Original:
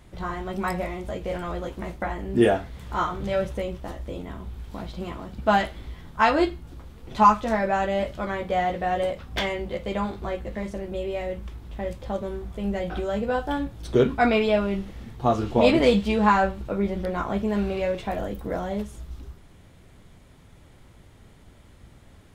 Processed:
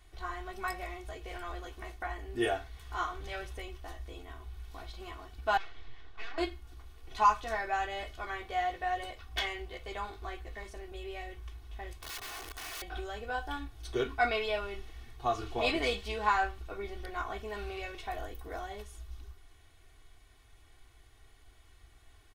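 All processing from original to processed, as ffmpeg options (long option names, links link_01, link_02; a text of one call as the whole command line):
ffmpeg -i in.wav -filter_complex "[0:a]asettb=1/sr,asplit=3[link_01][link_02][link_03];[link_01]atrim=end=5.574[link_04];[link_02]atrim=start=5.57:end=6.38,asetpts=PTS-STARTPTS,afade=type=in:duration=0.004:curve=qsin,afade=type=out:start_time=0.806:duration=0.004:curve=qsin,acompressor=threshold=-32dB:ratio=4:attack=3.2:release=140:knee=1:detection=peak,aeval=exprs='abs(val(0))':channel_layout=same,lowpass=4100[link_05];[link_03]atrim=start=6.376[link_06];[link_04][link_05]acrossfade=duration=0.004:curve1=hsin:curve2=qsin[link_07];[link_07][link_06]acrossfade=duration=0.004:curve1=qsin:curve2=hsin,asettb=1/sr,asplit=3[link_08][link_09][link_10];[link_08]atrim=end=11.944[link_11];[link_09]atrim=start=11.94:end=12.82,asetpts=PTS-STARTPTS,afade=type=in:duration=0.004:curve=qsin,afade=type=out:start_time=0.876:duration=0.004:curve=qsin,asubboost=boost=2:cutoff=66,aeval=exprs='(mod(35.5*val(0)+1,2)-1)/35.5':channel_layout=same[link_12];[link_10]atrim=start=12.816[link_13];[link_11][link_12]acrossfade=duration=0.004:curve1=hsin:curve2=qsin[link_14];[link_14][link_13]acrossfade=duration=0.004:curve1=qsin:curve2=hsin,equalizer=frequency=210:width=0.37:gain=-13.5,bandreject=frequency=7500:width=15,aecho=1:1:2.7:0.8,volume=-6dB" out.wav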